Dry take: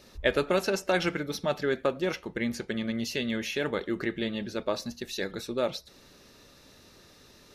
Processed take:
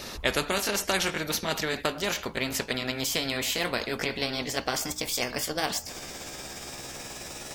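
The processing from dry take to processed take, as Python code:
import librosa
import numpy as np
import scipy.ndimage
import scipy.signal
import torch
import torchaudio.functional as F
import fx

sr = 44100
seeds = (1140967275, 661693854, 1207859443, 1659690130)

y = fx.pitch_glide(x, sr, semitones=6.0, runs='starting unshifted')
y = fx.spectral_comp(y, sr, ratio=2.0)
y = y * librosa.db_to_amplitude(2.5)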